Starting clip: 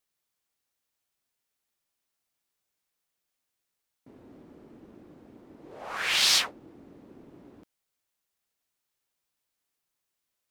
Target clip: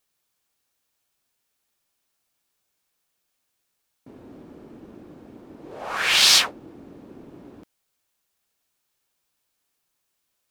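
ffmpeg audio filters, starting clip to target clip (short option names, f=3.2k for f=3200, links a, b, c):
-af "bandreject=f=2k:w=21,volume=7dB"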